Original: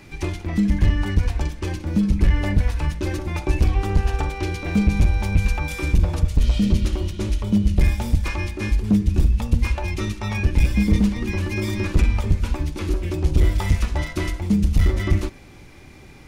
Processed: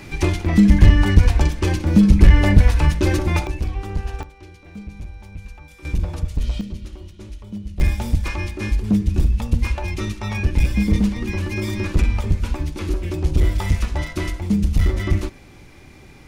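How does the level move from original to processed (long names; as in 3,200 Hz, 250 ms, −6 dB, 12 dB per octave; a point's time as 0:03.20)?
+7 dB
from 0:03.47 −6 dB
from 0:04.23 −17 dB
from 0:05.85 −4.5 dB
from 0:06.61 −13 dB
from 0:07.80 0 dB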